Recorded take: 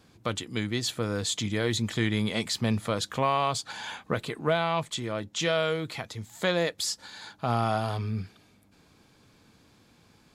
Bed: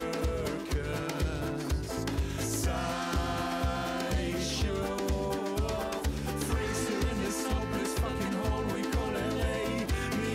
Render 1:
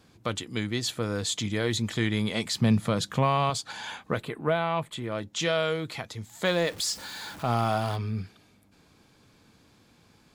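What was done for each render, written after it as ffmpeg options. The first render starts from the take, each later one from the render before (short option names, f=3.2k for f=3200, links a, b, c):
-filter_complex "[0:a]asettb=1/sr,asplit=3[a][b][c];[a]atrim=end=2.564[d];[b]atrim=start=2.56:end=3.5,asetpts=PTS-STARTPTS,afade=t=in:d=0.004:c=qsin,afade=t=out:st=0.936:d=0.004:c=qsin,equalizer=f=160:w=1.5:g=10.5[e];[c]atrim=start=3.496[f];[d][e]acrossfade=d=0.004:c1=hsin:c2=qsin[g];[g][f]acrossfade=d=0.004:c1=qsin:c2=hsin,asettb=1/sr,asplit=3[h][i][j];[h]atrim=end=4.224[k];[i]atrim=start=4.22:end=5.12,asetpts=PTS-STARTPTS,afade=t=in:d=0.004:c=qsin,afade=t=out:st=0.896:d=0.004:c=qsin,equalizer=f=5.8k:w=1.2:g=-13.5[l];[j]atrim=start=5.116[m];[k][l]acrossfade=d=0.004:c1=hsin:c2=qsin[n];[n][m]acrossfade=d=0.004:c1=qsin:c2=hsin,asettb=1/sr,asplit=3[o][p][q];[o]atrim=end=6.454[r];[p]atrim=start=6.45:end=7.96,asetpts=PTS-STARTPTS,afade=t=in:d=0.004:c=qsin,afade=t=out:st=1.506:d=0.004:c=qsin,aeval=exprs='val(0)+0.5*0.0112*sgn(val(0))':c=same[s];[q]atrim=start=7.956[t];[r][s]acrossfade=d=0.004:c1=hsin:c2=qsin[u];[u][t]acrossfade=d=0.004:c1=qsin:c2=hsin"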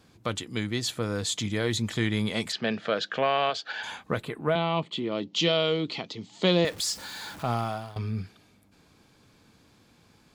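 -filter_complex "[0:a]asplit=3[a][b][c];[a]afade=t=out:st=2.51:d=0.02[d];[b]highpass=350,equalizer=f=440:t=q:w=4:g=4,equalizer=f=640:t=q:w=4:g=5,equalizer=f=1k:t=q:w=4:g=-7,equalizer=f=1.6k:t=q:w=4:g=10,equalizer=f=2.9k:t=q:w=4:g=6,lowpass=f=5.1k:w=0.5412,lowpass=f=5.1k:w=1.3066,afade=t=in:st=2.51:d=0.02,afade=t=out:st=3.82:d=0.02[e];[c]afade=t=in:st=3.82:d=0.02[f];[d][e][f]amix=inputs=3:normalize=0,asettb=1/sr,asplit=3[g][h][i];[g]atrim=end=4.554[j];[h]atrim=start=4.55:end=6.65,asetpts=PTS-STARTPTS,afade=t=in:d=0.004:c=qsin,afade=t=out:st=2.096:d=0.004:c=qsin,highpass=170,equalizer=f=180:t=q:w=4:g=9,equalizer=f=280:t=q:w=4:g=8,equalizer=f=390:t=q:w=4:g=7,equalizer=f=1.6k:t=q:w=4:g=-10,equalizer=f=3k:t=q:w=4:g=8,equalizer=f=4.4k:t=q:w=4:g=6,lowpass=f=6.1k:w=0.5412,lowpass=f=6.1k:w=1.3066[k];[i]atrim=start=6.646[l];[j][k]acrossfade=d=0.004:c1=hsin:c2=qsin[m];[m][l]acrossfade=d=0.004:c1=qsin:c2=hsin,asplit=2[n][o];[n]atrim=end=7.96,asetpts=PTS-STARTPTS,afade=t=out:st=7.4:d=0.56:silence=0.11885[p];[o]atrim=start=7.96,asetpts=PTS-STARTPTS,afade=t=in:d=0.004:c=hsin:silence=0.11885[q];[p][q]concat=n=2:v=0:a=1"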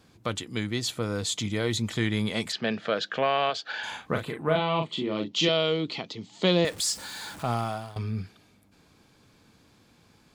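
-filter_complex "[0:a]asettb=1/sr,asplit=3[a][b][c];[a]atrim=end=0.744[d];[b]atrim=start=0.74:end=1.93,asetpts=PTS-STARTPTS,afade=t=in:d=0.004:c=qsin,afade=t=out:st=1.186:d=0.004:c=qsin,bandreject=f=1.7k:w=12[e];[c]atrim=start=1.926[f];[d][e]acrossfade=d=0.004:c1=hsin:c2=qsin[g];[g][f]acrossfade=d=0.004:c1=qsin:c2=hsin,asettb=1/sr,asplit=3[h][i][j];[h]atrim=end=3.674[k];[i]atrim=start=3.67:end=5.49,asetpts=PTS-STARTPTS,afade=t=in:d=0.004:c=qsin,afade=t=out:st=1.816:d=0.004:c=qsin,asplit=2[l][m];[m]adelay=38,volume=-5dB[n];[l][n]amix=inputs=2:normalize=0,atrim=end_sample=80262[o];[j]atrim=start=5.486[p];[k][o]acrossfade=d=0.004:c1=hsin:c2=qsin[q];[q][p]acrossfade=d=0.004:c1=qsin:c2=hsin,asettb=1/sr,asplit=3[r][s][t];[r]atrim=end=6.644[u];[s]atrim=start=6.64:end=8.03,asetpts=PTS-STARTPTS,afade=t=in:d=0.004:c=qsin,afade=t=out:st=1.386:d=0.004:c=qsin,equalizer=f=8.6k:t=o:w=0.54:g=5.5[v];[t]atrim=start=8.026[w];[u][v]acrossfade=d=0.004:c1=hsin:c2=qsin[x];[x][w]acrossfade=d=0.004:c1=qsin:c2=hsin"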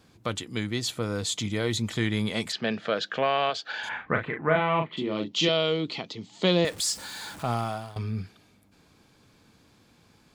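-filter_complex "[0:a]asplit=3[a][b][c];[a]afade=t=out:st=3.88:d=0.02[d];[b]lowpass=f=1.9k:t=q:w=2.8,afade=t=in:st=3.88:d=0.02,afade=t=out:st=4.96:d=0.02[e];[c]afade=t=in:st=4.96:d=0.02[f];[d][e][f]amix=inputs=3:normalize=0"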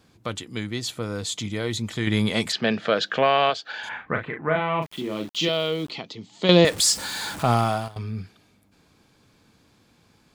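-filter_complex "[0:a]asplit=3[a][b][c];[a]afade=t=out:st=4.81:d=0.02[d];[b]aeval=exprs='val(0)*gte(abs(val(0)),0.00891)':c=same,afade=t=in:st=4.81:d=0.02,afade=t=out:st=5.89:d=0.02[e];[c]afade=t=in:st=5.89:d=0.02[f];[d][e][f]amix=inputs=3:normalize=0,asplit=5[g][h][i][j][k];[g]atrim=end=2.072[l];[h]atrim=start=2.068:end=3.542,asetpts=PTS-STARTPTS,volume=5.5dB[m];[i]atrim=start=3.538:end=6.492[n];[j]atrim=start=6.488:end=7.882,asetpts=PTS-STARTPTS,volume=8dB[o];[k]atrim=start=7.878[p];[l][m]acrossfade=d=0.004:c1=hsin:c2=hsin[q];[q][n]acrossfade=d=0.004:c1=hsin:c2=hsin[r];[r][o]acrossfade=d=0.004:c1=hsin:c2=hsin[s];[s][p]acrossfade=d=0.004:c1=hsin:c2=hsin"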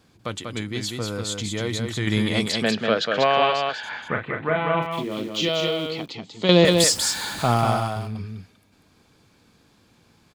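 -af "aecho=1:1:192:0.596"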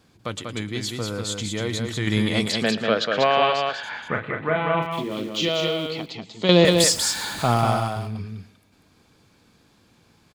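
-af "aecho=1:1:113:0.126"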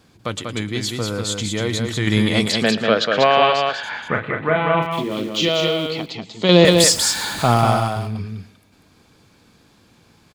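-af "volume=4.5dB,alimiter=limit=-1dB:level=0:latency=1"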